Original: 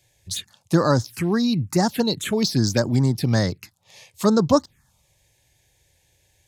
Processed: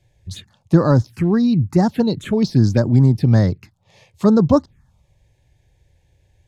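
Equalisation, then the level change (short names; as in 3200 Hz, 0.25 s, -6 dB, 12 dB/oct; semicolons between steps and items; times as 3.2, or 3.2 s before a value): tilt -2.5 dB/oct; high shelf 6100 Hz -6.5 dB; 0.0 dB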